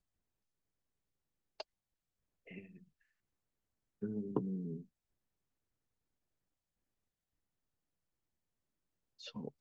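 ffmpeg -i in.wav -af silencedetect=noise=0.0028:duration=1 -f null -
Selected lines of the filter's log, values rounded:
silence_start: 0.00
silence_end: 1.60 | silence_duration: 1.60
silence_start: 2.78
silence_end: 4.02 | silence_duration: 1.24
silence_start: 4.82
silence_end: 9.20 | silence_duration: 4.38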